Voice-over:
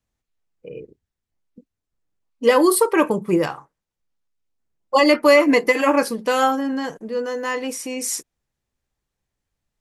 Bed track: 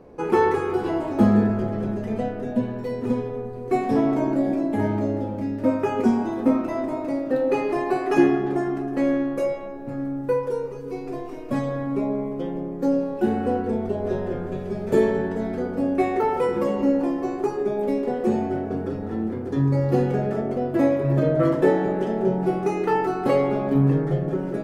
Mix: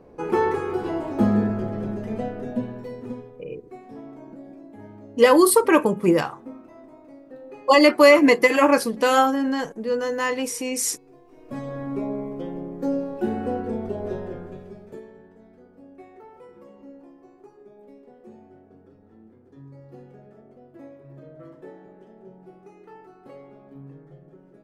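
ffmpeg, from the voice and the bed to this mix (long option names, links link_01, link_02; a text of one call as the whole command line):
ffmpeg -i stem1.wav -i stem2.wav -filter_complex "[0:a]adelay=2750,volume=0.5dB[link_01];[1:a]volume=14dB,afade=type=out:start_time=2.45:duration=0.98:silence=0.133352,afade=type=in:start_time=11.26:duration=0.61:silence=0.149624,afade=type=out:start_time=14.01:duration=1:silence=0.0891251[link_02];[link_01][link_02]amix=inputs=2:normalize=0" out.wav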